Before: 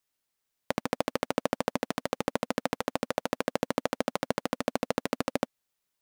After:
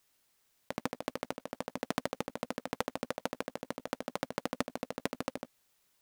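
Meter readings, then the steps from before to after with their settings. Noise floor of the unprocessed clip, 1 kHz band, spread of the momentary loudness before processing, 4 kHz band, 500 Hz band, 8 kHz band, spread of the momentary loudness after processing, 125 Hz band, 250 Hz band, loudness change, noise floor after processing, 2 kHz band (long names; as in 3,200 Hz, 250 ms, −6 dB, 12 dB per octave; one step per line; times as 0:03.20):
−83 dBFS, −7.0 dB, 3 LU, −6.0 dB, −8.0 dB, −6.0 dB, 5 LU, −6.5 dB, −7.0 dB, −7.0 dB, −77 dBFS, −6.5 dB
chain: compressor whose output falls as the input rises −34 dBFS, ratio −0.5
level +1 dB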